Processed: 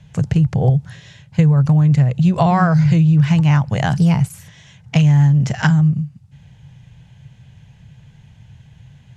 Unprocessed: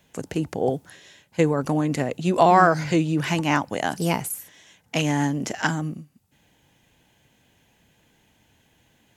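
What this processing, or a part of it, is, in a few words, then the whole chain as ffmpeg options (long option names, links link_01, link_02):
jukebox: -af "lowpass=6300,lowshelf=frequency=200:width_type=q:width=3:gain=13.5,acompressor=threshold=-18dB:ratio=3,volume=5.5dB"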